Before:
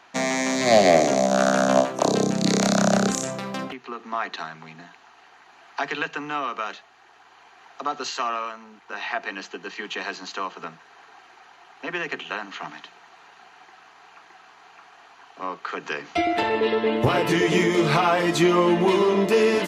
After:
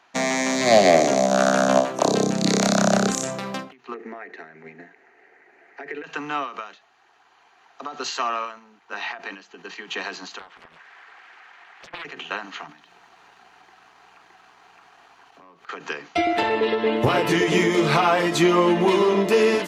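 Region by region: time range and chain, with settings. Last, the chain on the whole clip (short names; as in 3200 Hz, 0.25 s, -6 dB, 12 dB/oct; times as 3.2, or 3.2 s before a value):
3.94–6.04 compressor 2.5:1, threshold -39 dBFS + EQ curve 150 Hz 0 dB, 290 Hz +7 dB, 410 Hz +14 dB, 680 Hz +3 dB, 1100 Hz -9 dB, 2000 Hz +10 dB, 3200 Hz -12 dB, 8400 Hz -7 dB
10.39–12.05 bell 1900 Hz +13 dB 1.4 oct + compressor 4:1, threshold -37 dBFS + Doppler distortion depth 0.99 ms
12.67–15.69 low shelf 230 Hz +9 dB + sample leveller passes 1 + compressor 12:1, threshold -40 dBFS
whole clip: gate -38 dBFS, range -7 dB; low shelf 170 Hz -3 dB; ending taper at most 130 dB/s; gain +1.5 dB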